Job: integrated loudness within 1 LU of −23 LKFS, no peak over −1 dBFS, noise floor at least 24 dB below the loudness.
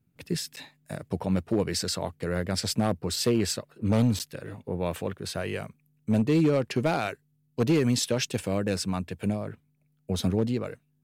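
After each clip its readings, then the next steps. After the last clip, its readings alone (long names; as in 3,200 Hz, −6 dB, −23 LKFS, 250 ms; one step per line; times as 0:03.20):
share of clipped samples 0.7%; peaks flattened at −16.5 dBFS; number of dropouts 2; longest dropout 8.8 ms; integrated loudness −28.0 LKFS; sample peak −16.5 dBFS; target loudness −23.0 LKFS
→ clipped peaks rebuilt −16.5 dBFS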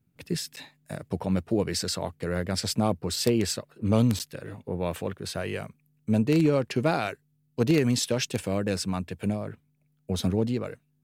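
share of clipped samples 0.0%; number of dropouts 2; longest dropout 8.8 ms
→ repair the gap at 0:00.56/0:04.19, 8.8 ms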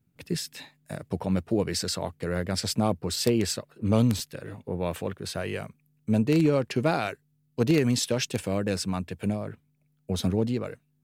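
number of dropouts 0; integrated loudness −27.5 LKFS; sample peak −7.5 dBFS; target loudness −23.0 LKFS
→ level +4.5 dB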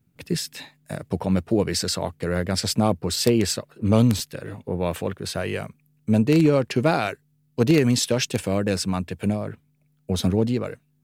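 integrated loudness −23.0 LKFS; sample peak −3.0 dBFS; background noise floor −66 dBFS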